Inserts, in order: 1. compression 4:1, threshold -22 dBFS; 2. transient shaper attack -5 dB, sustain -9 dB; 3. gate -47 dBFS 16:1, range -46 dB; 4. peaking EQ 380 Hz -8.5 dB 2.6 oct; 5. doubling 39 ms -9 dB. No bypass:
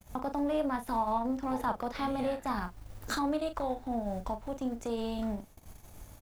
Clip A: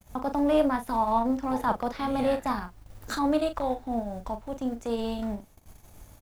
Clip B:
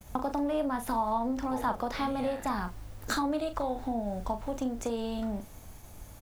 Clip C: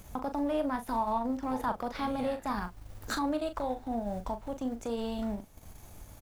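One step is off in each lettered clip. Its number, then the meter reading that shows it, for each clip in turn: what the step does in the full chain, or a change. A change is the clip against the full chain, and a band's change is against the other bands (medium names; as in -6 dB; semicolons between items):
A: 1, 8 kHz band -2.5 dB; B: 2, 8 kHz band +2.5 dB; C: 3, momentary loudness spread change +2 LU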